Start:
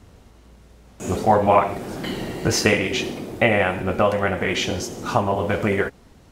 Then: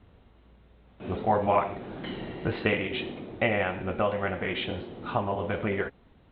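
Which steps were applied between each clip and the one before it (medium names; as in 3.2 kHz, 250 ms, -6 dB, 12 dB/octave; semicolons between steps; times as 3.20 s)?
steep low-pass 3.9 kHz 96 dB/octave; trim -8 dB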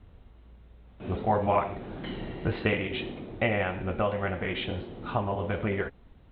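bass shelf 78 Hz +11.5 dB; trim -1.5 dB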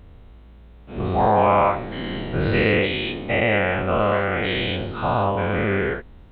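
every event in the spectrogram widened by 240 ms; trim +2 dB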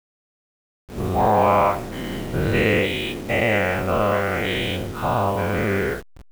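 send-on-delta sampling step -34.5 dBFS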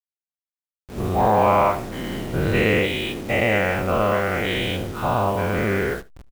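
delay 75 ms -21.5 dB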